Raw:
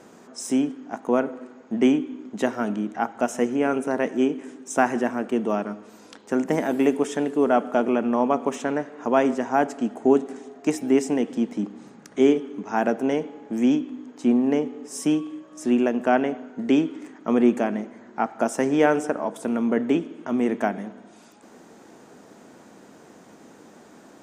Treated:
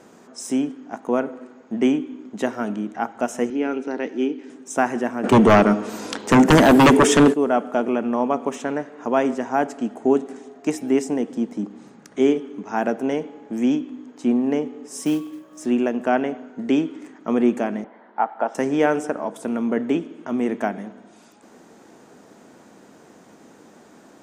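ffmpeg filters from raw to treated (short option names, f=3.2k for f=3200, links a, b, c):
-filter_complex "[0:a]asettb=1/sr,asplit=3[a][b][c];[a]atrim=end=3.504[d];[b]atrim=start=3.5:end=4.5,asetpts=PTS-STARTPTS,afade=t=in:d=0.004:c=qsin,afade=t=out:st=0.996:d=0.004:c=qsin,highpass=270,equalizer=f=300:t=q:w=4:g=4,equalizer=f=630:t=q:w=4:g=-9,equalizer=f=1.1k:t=q:w=4:g=-9,equalizer=f=1.7k:t=q:w=4:g=-3,equalizer=f=4.4k:t=q:w=4:g=5,lowpass=f=5.6k:w=0.5412,lowpass=f=5.6k:w=1.3066[e];[c]atrim=start=4.496[f];[d][e]acrossfade=d=0.004:c1=hsin:c2=qsin[g];[g][f]acrossfade=d=0.004:c1=qsin:c2=hsin,asplit=3[h][i][j];[h]afade=t=out:st=5.23:d=0.02[k];[i]aeval=exprs='0.422*sin(PI/2*3.98*val(0)/0.422)':c=same,afade=t=in:st=5.23:d=0.02,afade=t=out:st=7.32:d=0.02[l];[j]afade=t=in:st=7.32:d=0.02[m];[k][l][m]amix=inputs=3:normalize=0,asettb=1/sr,asplit=3[n][o][p];[n]atrim=end=11.044[q];[o]atrim=start=11.04:end=11.71,asetpts=PTS-STARTPTS,afade=t=in:d=0.004:c=qsin,afade=t=out:st=0.666:d=0.004:c=qsin,equalizer=f=2.7k:t=o:w=1.2:g=-5[r];[p]atrim=start=11.706[s];[q][r]acrossfade=d=0.004:c1=hsin:c2=qsin[t];[t][s]acrossfade=d=0.004:c1=qsin:c2=hsin,asettb=1/sr,asplit=3[u][v][w];[u]atrim=end=14.994[x];[v]atrim=start=14.99:end=15.66,asetpts=PTS-STARTPTS,afade=t=in:d=0.004:c=qsin,afade=t=out:st=0.666:d=0.004:c=qsin,acrusher=bits=6:mode=log:mix=0:aa=0.000001[y];[w]atrim=start=15.656[z];[x][y]acrossfade=d=0.004:c1=hsin:c2=qsin[aa];[aa][z]acrossfade=d=0.004:c1=qsin:c2=hsin,asettb=1/sr,asplit=3[ab][ac][ad];[ab]atrim=end=17.844[ae];[ac]atrim=start=17.84:end=18.55,asetpts=PTS-STARTPTS,afade=t=in:d=0.004:c=qsin,afade=t=out:st=0.706:d=0.004:c=qsin,highpass=f=220:w=0.5412,highpass=f=220:w=1.3066,equalizer=f=240:t=q:w=4:g=-8,equalizer=f=360:t=q:w=4:g=-8,equalizer=f=860:t=q:w=4:g=7,equalizer=f=2.5k:t=q:w=4:g=-6,lowpass=f=3.3k:w=0.5412,lowpass=f=3.3k:w=1.3066[af];[ad]atrim=start=18.546[ag];[ae][af]acrossfade=d=0.004:c1=hsin:c2=qsin[ah];[ah][ag]acrossfade=d=0.004:c1=qsin:c2=hsin"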